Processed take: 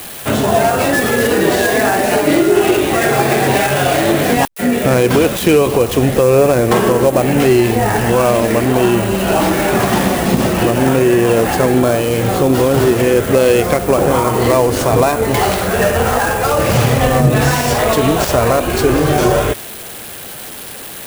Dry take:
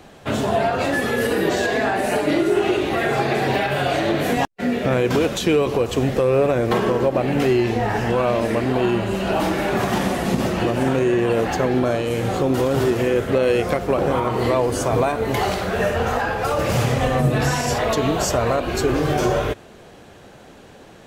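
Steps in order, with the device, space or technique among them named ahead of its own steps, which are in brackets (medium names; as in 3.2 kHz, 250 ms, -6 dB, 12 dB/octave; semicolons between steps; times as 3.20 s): budget class-D amplifier (dead-time distortion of 0.085 ms; zero-crossing glitches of -20.5 dBFS); trim +7 dB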